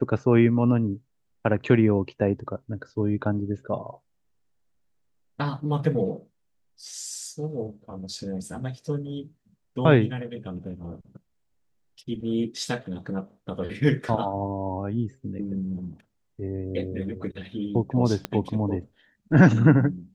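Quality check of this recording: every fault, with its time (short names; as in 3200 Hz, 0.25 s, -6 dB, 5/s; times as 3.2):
18.25 pop -13 dBFS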